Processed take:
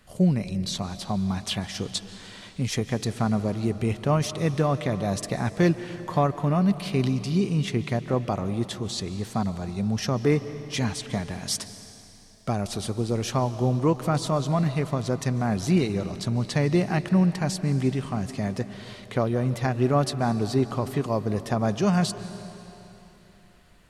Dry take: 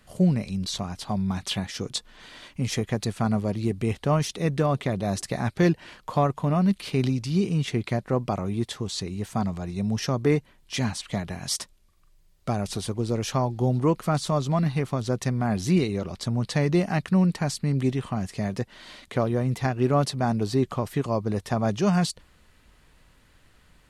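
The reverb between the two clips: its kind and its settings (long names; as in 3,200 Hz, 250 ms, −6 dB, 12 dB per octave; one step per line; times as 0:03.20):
comb and all-pass reverb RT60 3.3 s, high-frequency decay 0.95×, pre-delay 105 ms, DRR 12.5 dB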